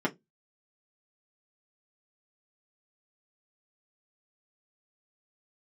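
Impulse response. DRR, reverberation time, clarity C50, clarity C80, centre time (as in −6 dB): −3.5 dB, 0.15 s, 23.5 dB, 33.5 dB, 10 ms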